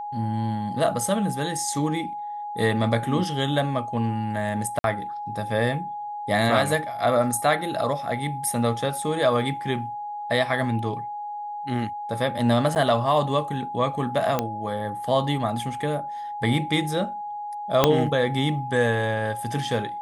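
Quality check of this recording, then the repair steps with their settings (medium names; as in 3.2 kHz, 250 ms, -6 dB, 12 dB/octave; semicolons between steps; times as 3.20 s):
whine 830 Hz -30 dBFS
4.79–4.84 s: dropout 52 ms
12.75–12.76 s: dropout 9.5 ms
14.39 s: pop -9 dBFS
17.84 s: pop -2 dBFS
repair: de-click; band-stop 830 Hz, Q 30; interpolate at 4.79 s, 52 ms; interpolate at 12.75 s, 9.5 ms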